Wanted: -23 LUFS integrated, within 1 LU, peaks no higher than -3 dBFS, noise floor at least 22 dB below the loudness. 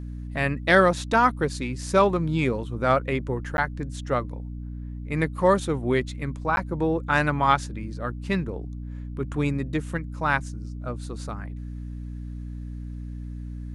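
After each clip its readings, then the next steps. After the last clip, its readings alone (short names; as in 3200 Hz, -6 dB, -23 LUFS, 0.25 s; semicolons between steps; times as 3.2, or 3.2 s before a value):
dropouts 2; longest dropout 11 ms; hum 60 Hz; harmonics up to 300 Hz; hum level -32 dBFS; loudness -25.0 LUFS; peak -5.5 dBFS; loudness target -23.0 LUFS
-> interpolate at 3.57/6.56, 11 ms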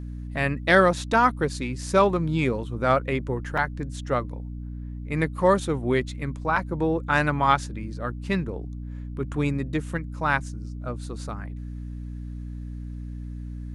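dropouts 0; hum 60 Hz; harmonics up to 300 Hz; hum level -32 dBFS
-> notches 60/120/180/240/300 Hz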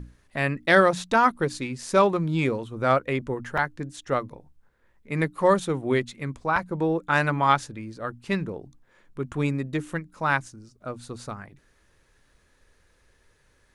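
hum none; loudness -25.0 LUFS; peak -5.5 dBFS; loudness target -23.0 LUFS
-> gain +2 dB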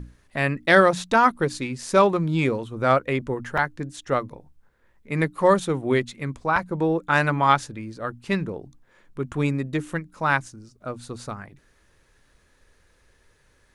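loudness -23.0 LUFS; peak -3.5 dBFS; noise floor -62 dBFS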